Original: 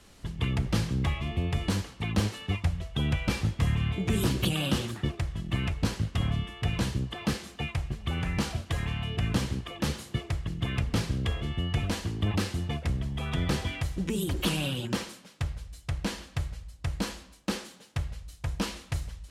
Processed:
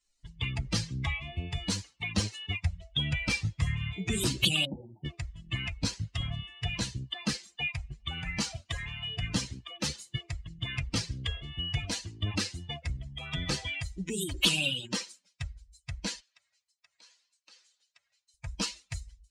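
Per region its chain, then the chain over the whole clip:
4.65–5.05 s: steep low-pass 930 Hz 72 dB/octave + compression 1.5:1, threshold -32 dBFS
16.20–18.34 s: frequency weighting A + compression 2:1, threshold -53 dBFS + echo whose repeats swap between lows and highs 105 ms, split 2.1 kHz, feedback 69%, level -13 dB
whole clip: expander on every frequency bin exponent 2; high-order bell 4.4 kHz +11 dB 2.4 oct

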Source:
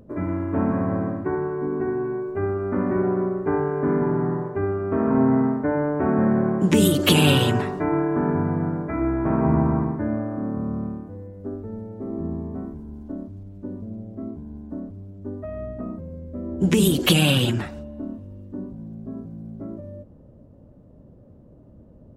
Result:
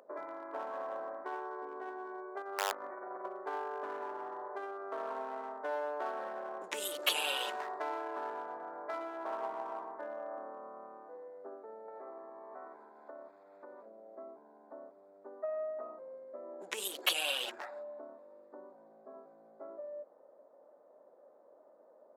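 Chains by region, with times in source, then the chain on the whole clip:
2.42–3.26 s: treble shelf 3.6 kHz +7 dB + compressor with a negative ratio -26 dBFS, ratio -0.5 + integer overflow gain 16.5 dB
11.88–13.86 s: peaking EQ 2.1 kHz +11 dB 2.7 oct + compression, threshold -35 dBFS
whole clip: local Wiener filter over 15 samples; compression 3:1, threshold -33 dBFS; high-pass 590 Hz 24 dB/octave; trim +3 dB

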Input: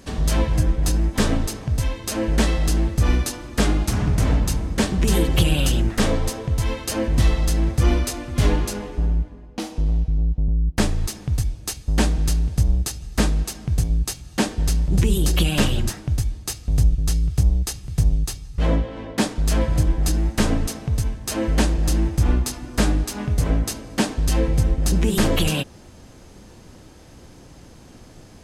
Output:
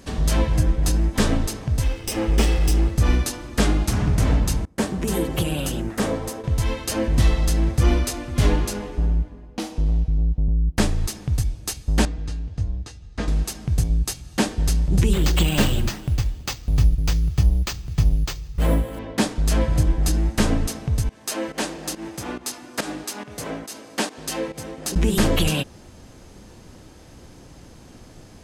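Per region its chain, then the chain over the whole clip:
1.83–2.91 s: comb filter that takes the minimum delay 0.37 ms + comb 2.4 ms, depth 33%
4.65–6.44 s: high-pass 190 Hz 6 dB/octave + peaking EQ 3.7 kHz -7 dB 2.2 oct + gate with hold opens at -22 dBFS, closes at -29 dBFS
12.05–13.28 s: distance through air 110 m + feedback comb 95 Hz, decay 0.22 s, harmonics odd, mix 70%
15.13–18.99 s: feedback delay 329 ms, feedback 34%, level -21.5 dB + careless resampling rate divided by 4×, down none, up hold
21.09–24.96 s: Bessel high-pass 380 Hz + volume shaper 140 bpm, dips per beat 1, -14 dB, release 164 ms
whole clip: none

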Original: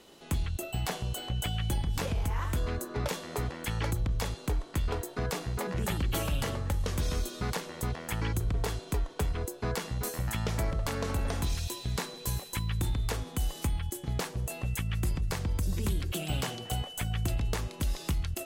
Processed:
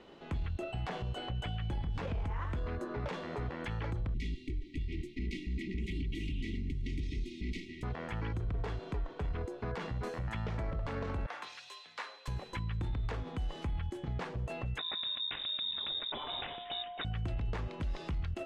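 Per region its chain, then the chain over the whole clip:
4.14–7.83 s: comb filter that takes the minimum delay 3.6 ms + brick-wall FIR band-stop 430–1900 Hz
11.26–12.28 s: high-pass 990 Hz + frequency shift +43 Hz + three bands expanded up and down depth 70%
14.78–17.05 s: peaking EQ 390 Hz -6.5 dB 2.4 oct + frequency inversion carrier 3.7 kHz
whole clip: low-pass 2.5 kHz 12 dB/octave; peak limiter -31 dBFS; trim +1.5 dB

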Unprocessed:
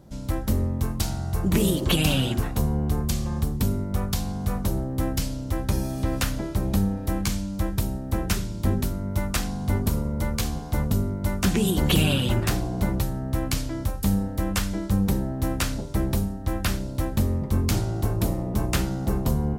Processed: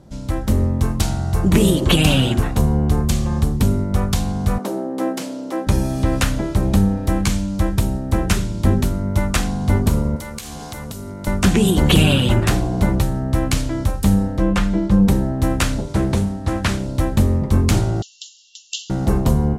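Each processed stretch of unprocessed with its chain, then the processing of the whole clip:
4.58–5.67 s: Bessel high-pass 370 Hz, order 8 + tilt shelf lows +5.5 dB, about 1.1 kHz
10.16–11.27 s: tilt EQ +2.5 dB/octave + compression, threshold -34 dBFS
14.37–15.08 s: low-pass 2 kHz 6 dB/octave + comb 5.7 ms, depth 56%
15.88–16.87 s: CVSD coder 64 kbps + high-pass 66 Hz + loudspeaker Doppler distortion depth 0.25 ms
18.02–18.90 s: brick-wall FIR band-pass 2.7–7.5 kHz + upward compressor, threshold -49 dBFS
whole clip: low-pass 10 kHz 12 dB/octave; dynamic bell 5 kHz, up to -4 dB, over -49 dBFS, Q 2.1; level rider gain up to 3.5 dB; trim +4 dB

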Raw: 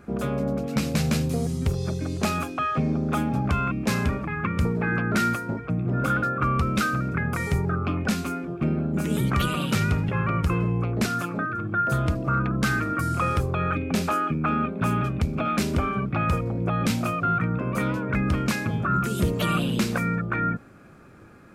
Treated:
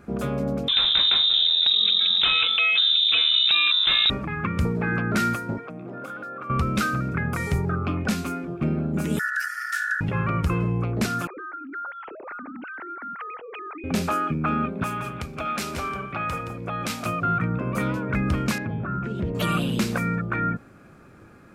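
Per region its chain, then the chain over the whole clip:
0.68–4.10 s: frequency inversion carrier 3.8 kHz + level flattener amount 70%
5.58–6.50 s: high-pass 270 Hz + peaking EQ 690 Hz +4 dB 1.4 oct + compression 10:1, threshold -32 dBFS
9.19–10.01 s: Chebyshev band-stop 310–3600 Hz, order 4 + ring modulator 1.6 kHz
11.27–13.84 s: formants replaced by sine waves + compression 4:1, threshold -35 dBFS
14.83–17.06 s: bass shelf 410 Hz -12 dB + delay 171 ms -8.5 dB
18.58–19.35 s: low-pass 2 kHz + compression 2:1, threshold -26 dBFS + peaking EQ 1.2 kHz -9 dB 0.24 oct
whole clip: none

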